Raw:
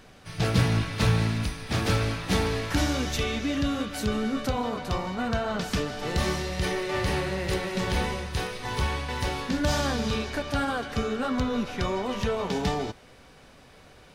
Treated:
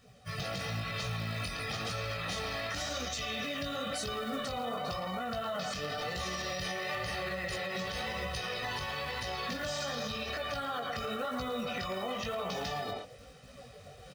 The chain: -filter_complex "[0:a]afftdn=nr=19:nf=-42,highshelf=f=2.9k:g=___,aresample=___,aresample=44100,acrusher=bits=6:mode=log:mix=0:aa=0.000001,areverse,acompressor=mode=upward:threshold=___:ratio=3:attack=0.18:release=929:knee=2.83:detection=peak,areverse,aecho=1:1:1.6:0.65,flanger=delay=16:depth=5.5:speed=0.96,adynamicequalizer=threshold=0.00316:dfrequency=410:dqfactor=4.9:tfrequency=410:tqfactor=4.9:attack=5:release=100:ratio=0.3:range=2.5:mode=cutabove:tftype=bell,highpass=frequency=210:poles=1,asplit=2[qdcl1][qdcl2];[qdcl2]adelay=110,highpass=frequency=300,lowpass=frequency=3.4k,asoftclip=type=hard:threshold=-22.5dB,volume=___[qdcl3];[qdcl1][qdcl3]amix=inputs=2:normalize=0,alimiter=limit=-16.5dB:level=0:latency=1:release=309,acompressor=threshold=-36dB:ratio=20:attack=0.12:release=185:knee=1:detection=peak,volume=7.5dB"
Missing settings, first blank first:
7.5, 22050, -41dB, -9dB